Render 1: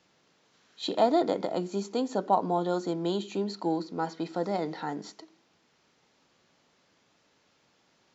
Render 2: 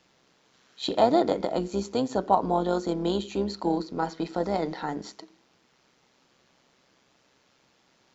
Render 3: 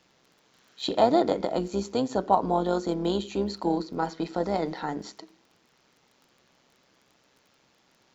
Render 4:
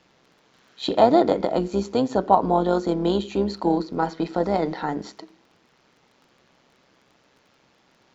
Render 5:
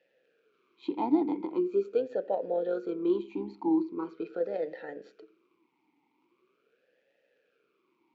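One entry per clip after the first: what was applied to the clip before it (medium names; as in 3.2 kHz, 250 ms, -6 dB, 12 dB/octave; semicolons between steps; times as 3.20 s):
AM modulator 130 Hz, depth 35%; trim +5 dB
crackle 21 per s -47 dBFS
low-pass 3.7 kHz 6 dB/octave; trim +5 dB
talking filter e-u 0.42 Hz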